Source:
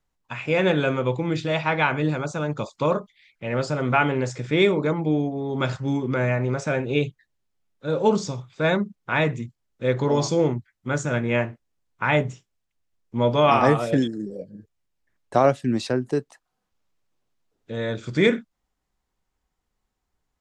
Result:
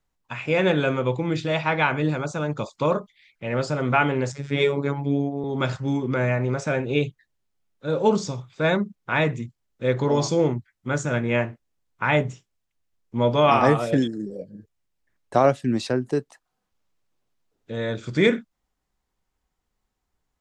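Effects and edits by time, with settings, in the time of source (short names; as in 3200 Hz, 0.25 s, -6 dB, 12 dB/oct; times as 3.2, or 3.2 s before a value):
4.32–5.44 robotiser 141 Hz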